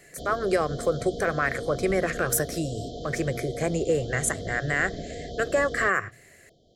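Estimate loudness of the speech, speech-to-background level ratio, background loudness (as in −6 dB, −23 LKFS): −27.0 LKFS, 10.0 dB, −37.0 LKFS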